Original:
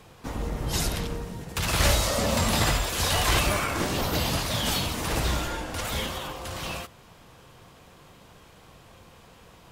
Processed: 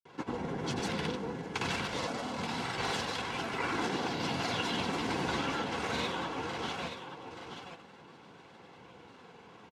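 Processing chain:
high-pass filter 180 Hz 12 dB per octave
high-shelf EQ 6,100 Hz −9.5 dB
compressor whose output falls as the input rises −31 dBFS, ratio −1
granular cloud, pitch spread up and down by 3 semitones
high-frequency loss of the air 65 metres
notch comb filter 610 Hz
on a send: single-tap delay 878 ms −8.5 dB

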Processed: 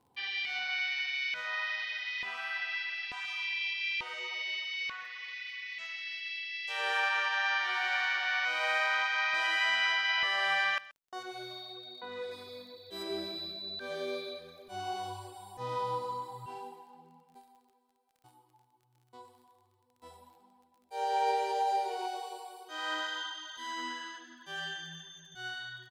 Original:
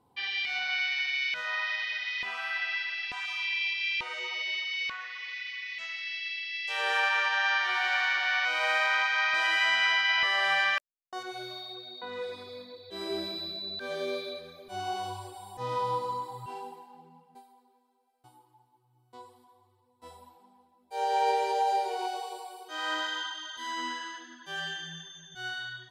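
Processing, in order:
0:12.31–0:13.03: high-shelf EQ 7,500 Hz +11.5 dB
surface crackle 31 per second −50 dBFS
single-tap delay 130 ms −19.5 dB
level −3.5 dB

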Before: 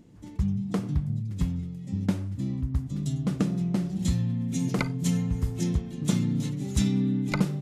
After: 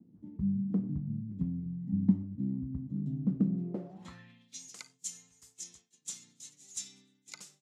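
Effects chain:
band-pass filter sweep 220 Hz → 7,000 Hz, 0:03.53–0:04.68
downward expander −56 dBFS
0:01.66–0:02.23: comb filter 1 ms, depth 72%

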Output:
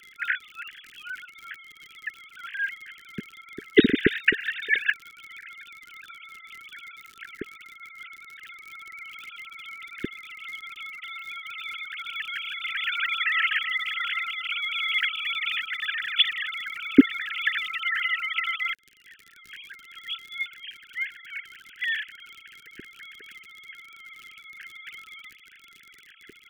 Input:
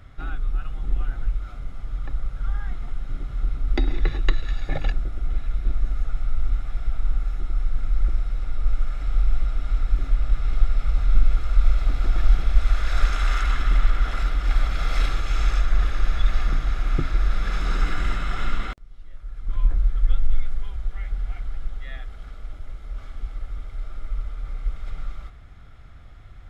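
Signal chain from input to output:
three sine waves on the formant tracks
surface crackle 58 per second −28 dBFS
Chebyshev band-stop filter 430–1,600 Hz, order 4
level −5.5 dB

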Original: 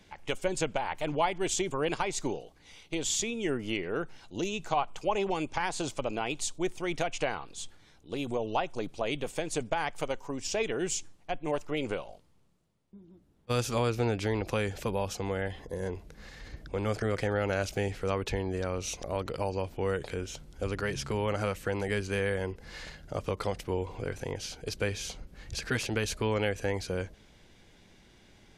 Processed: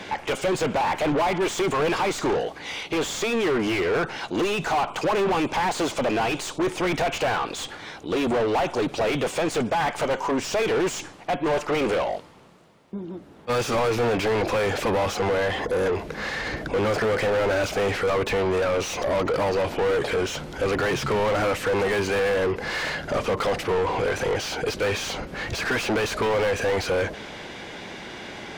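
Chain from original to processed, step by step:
mid-hump overdrive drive 37 dB, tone 1,500 Hz, clips at −13.5 dBFS
level −1 dB

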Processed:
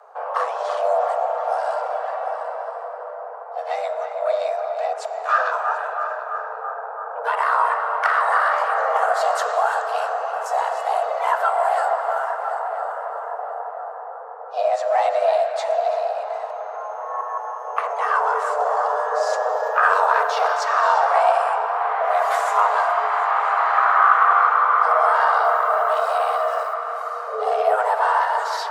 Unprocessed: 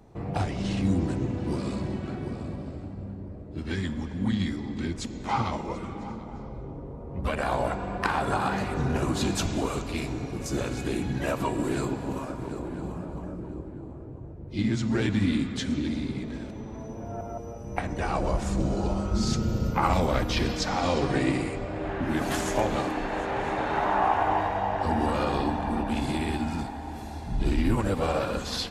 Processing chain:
in parallel at −8.5 dB: soft clipping −24 dBFS, distortion −12 dB
on the sum: flat-topped bell 550 Hz +12 dB 2.9 octaves
on a send: feedback echo with a band-pass in the loop 332 ms, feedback 76%, band-pass 840 Hz, level −7.5 dB
0:25.44–0:26.74: on the sum: bit-depth reduction 8 bits, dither none
hum removal 60.67 Hz, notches 27
frequency shifter +400 Hz
level −4.5 dB

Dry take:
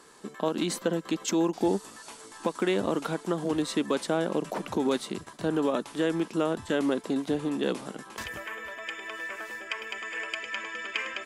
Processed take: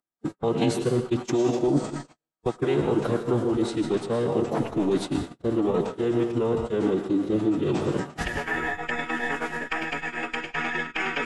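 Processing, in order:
reversed playback
downward compressor 5 to 1, threshold −35 dBFS, peak gain reduction 13.5 dB
reversed playback
spectral tilt −2 dB per octave
comb and all-pass reverb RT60 1.1 s, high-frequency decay 0.95×, pre-delay 70 ms, DRR 5 dB
in parallel at 0 dB: speech leveller within 4 dB 2 s
on the sum: noise gate −32 dBFS, range −56 dB
phase-vocoder pitch shift with formants kept −5.5 semitones
level +5 dB

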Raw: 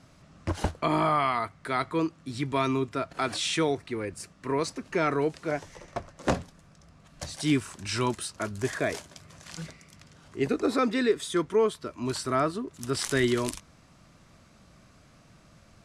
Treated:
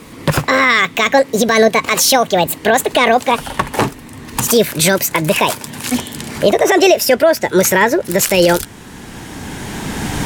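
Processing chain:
gliding playback speed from 172% → 137%
camcorder AGC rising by 11 dB per second
boost into a limiter +19.5 dB
level −1 dB

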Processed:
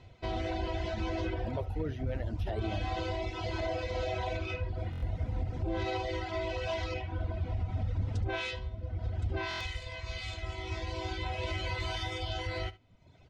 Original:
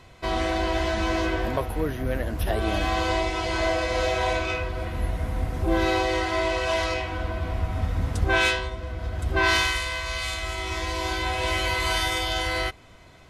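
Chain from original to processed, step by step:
notch filter 1,100 Hz, Q 6
reverb reduction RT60 0.91 s
graphic EQ with 15 bands 100 Hz +9 dB, 1,600 Hz −6 dB, 10,000 Hz −8 dB
brickwall limiter −19 dBFS, peak gain reduction 10 dB
high-frequency loss of the air 81 metres
single-tap delay 71 ms −18.5 dB
buffer that repeats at 0:04.91/0:09.49, samples 1,024, times 4
level −5.5 dB

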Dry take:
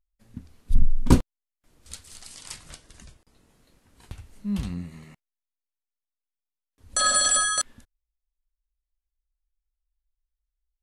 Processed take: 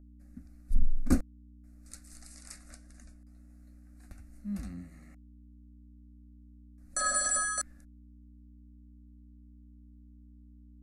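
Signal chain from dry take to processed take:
mains hum 60 Hz, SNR 18 dB
phaser with its sweep stopped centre 640 Hz, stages 8
level −6 dB

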